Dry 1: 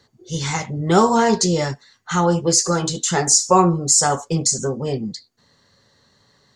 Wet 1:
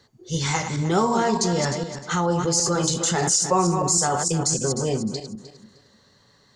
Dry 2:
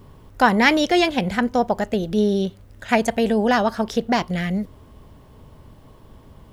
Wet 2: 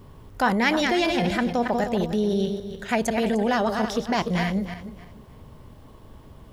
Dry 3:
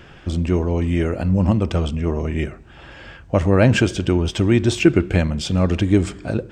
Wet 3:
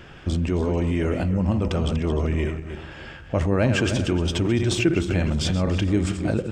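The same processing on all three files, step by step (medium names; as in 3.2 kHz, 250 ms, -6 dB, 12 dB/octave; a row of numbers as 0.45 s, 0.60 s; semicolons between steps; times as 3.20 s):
backward echo that repeats 153 ms, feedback 48%, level -8.5 dB; in parallel at -3 dB: compressor with a negative ratio -21 dBFS, ratio -0.5; on the sum: trim -7 dB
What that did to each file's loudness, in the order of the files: -4.0 LU, -3.5 LU, -4.0 LU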